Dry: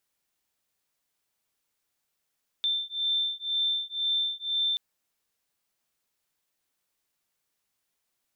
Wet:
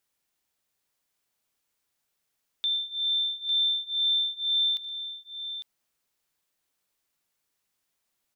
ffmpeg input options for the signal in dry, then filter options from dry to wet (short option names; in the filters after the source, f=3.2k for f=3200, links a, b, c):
-f lavfi -i "aevalsrc='0.0355*(sin(2*PI*3560*t)+sin(2*PI*3562*t))':d=2.13:s=44100"
-af "aecho=1:1:73|119|852:0.119|0.15|0.355"